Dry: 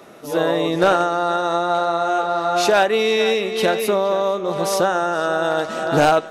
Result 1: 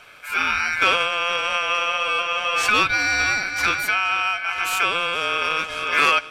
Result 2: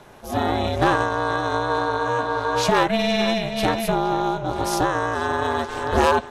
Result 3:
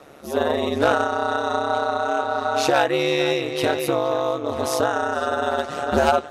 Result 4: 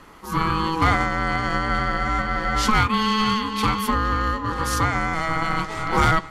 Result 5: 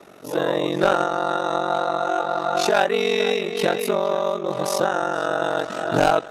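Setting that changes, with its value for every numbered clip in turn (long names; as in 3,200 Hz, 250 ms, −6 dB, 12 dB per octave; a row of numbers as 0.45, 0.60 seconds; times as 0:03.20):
ring modulation, frequency: 1,900, 230, 71, 650, 23 Hertz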